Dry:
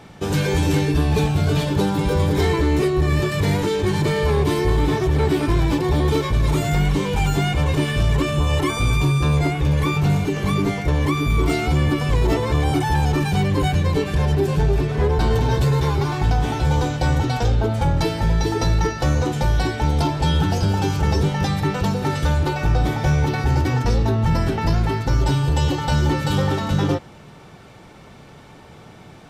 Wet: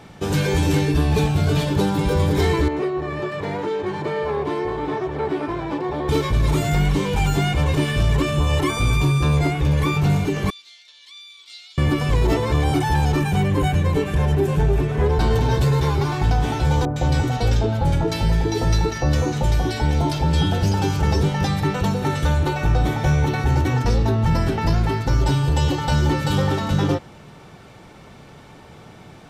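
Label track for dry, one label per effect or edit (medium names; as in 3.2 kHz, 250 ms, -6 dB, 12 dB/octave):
2.680000	6.090000	band-pass filter 770 Hz, Q 0.68
10.500000	11.780000	ladder band-pass 4.3 kHz, resonance 60%
13.210000	15.060000	peaking EQ 4.6 kHz -8 dB 0.65 oct
16.850000	20.740000	bands offset in time lows, highs 110 ms, split 1.2 kHz
21.730000	23.780000	band-stop 4.9 kHz, Q 9.3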